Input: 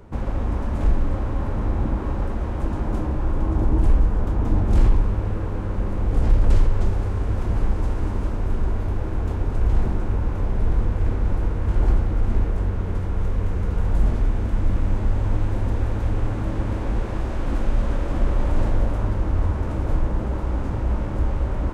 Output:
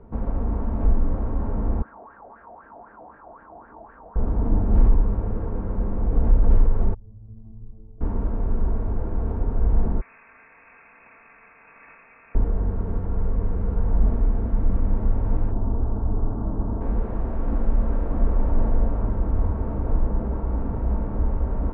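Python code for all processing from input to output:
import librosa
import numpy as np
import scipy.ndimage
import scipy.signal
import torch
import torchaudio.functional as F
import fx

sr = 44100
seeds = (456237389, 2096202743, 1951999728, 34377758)

y = fx.chain(x, sr, fx.wah_lfo(hz=3.9, low_hz=670.0, high_hz=1700.0, q=7.5),
    fx.env_flatten(amount_pct=70), at=(1.82, 4.16))
y = fx.chain(y, sr, fx.envelope_sharpen(power=2.0),
    fx.lowpass(hz=1400.0, slope=12),
    fx.comb_fb(f0_hz=110.0, decay_s=0.56, harmonics='all', damping=0.0, mix_pct=100), at=(6.94, 8.01))
y = fx.chain(y, sr, fx.highpass(hz=1100.0, slope=6),
    fx.high_shelf(hz=2000.0, db=-7.0),
    fx.freq_invert(carrier_hz=2600), at=(10.01, 12.35))
y = fx.chain(y, sr, fx.lowpass(hz=1300.0, slope=24),
    fx.notch(hz=510.0, q=8.3), at=(15.51, 16.81))
y = scipy.signal.sosfilt(scipy.signal.butter(2, 1100.0, 'lowpass', fs=sr, output='sos'), y)
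y = y + 0.38 * np.pad(y, (int(4.4 * sr / 1000.0), 0))[:len(y)]
y = y * librosa.db_to_amplitude(-1.5)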